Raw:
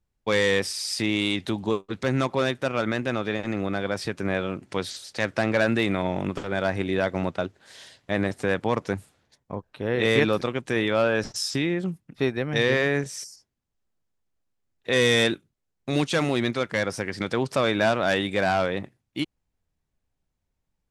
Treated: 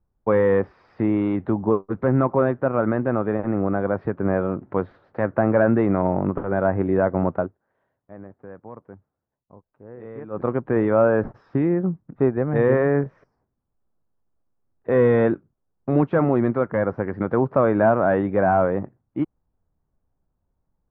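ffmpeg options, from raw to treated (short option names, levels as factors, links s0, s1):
-filter_complex "[0:a]asplit=3[s0][s1][s2];[s0]atrim=end=7.57,asetpts=PTS-STARTPTS,afade=t=out:st=7.38:d=0.19:silence=0.0944061[s3];[s1]atrim=start=7.57:end=10.3,asetpts=PTS-STARTPTS,volume=0.0944[s4];[s2]atrim=start=10.3,asetpts=PTS-STARTPTS,afade=t=in:d=0.19:silence=0.0944061[s5];[s3][s4][s5]concat=n=3:v=0:a=1,lowpass=f=1300:w=0.5412,lowpass=f=1300:w=1.3066,volume=1.88"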